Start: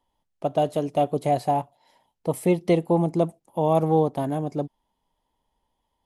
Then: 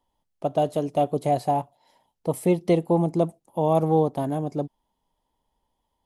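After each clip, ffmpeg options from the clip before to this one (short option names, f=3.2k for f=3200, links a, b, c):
-af "equalizer=f=2.1k:w=1:g=-3"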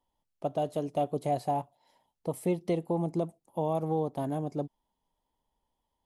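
-af "alimiter=limit=-14dB:level=0:latency=1:release=263,volume=-5.5dB"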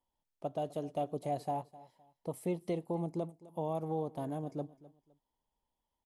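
-af "aecho=1:1:257|514:0.112|0.0314,volume=-6dB"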